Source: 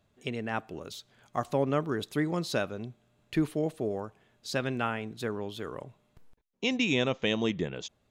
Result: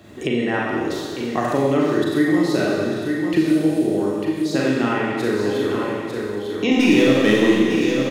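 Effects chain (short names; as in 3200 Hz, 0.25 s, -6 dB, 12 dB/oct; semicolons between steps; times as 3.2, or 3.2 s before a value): HPF 48 Hz; 6.71–7.57 sample leveller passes 3; small resonant body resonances 320/1900 Hz, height 12 dB, ringing for 40 ms; on a send: echo 0.898 s -11.5 dB; on the sum: Schroeder reverb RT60 1.3 s, combs from 30 ms, DRR -5 dB; three-band squash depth 70%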